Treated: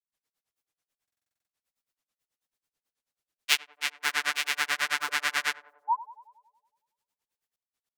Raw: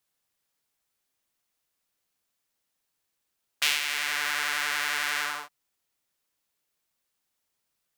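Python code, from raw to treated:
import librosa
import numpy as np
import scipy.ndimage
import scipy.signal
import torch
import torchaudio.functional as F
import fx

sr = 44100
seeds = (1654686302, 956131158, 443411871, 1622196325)

p1 = fx.spec_paint(x, sr, seeds[0], shape='rise', start_s=5.35, length_s=0.43, low_hz=450.0, high_hz=1600.0, level_db=-26.0)
p2 = fx.noise_reduce_blind(p1, sr, reduce_db=7)
p3 = fx.granulator(p2, sr, seeds[1], grain_ms=100.0, per_s=9.2, spray_ms=621.0, spread_st=0)
p4 = p3 + fx.echo_banded(p3, sr, ms=93, feedback_pct=73, hz=540.0, wet_db=-14.5, dry=0)
p5 = fx.buffer_glitch(p4, sr, at_s=(1.03,), block=2048, repeats=9)
y = p5 * librosa.db_to_amplitude(4.5)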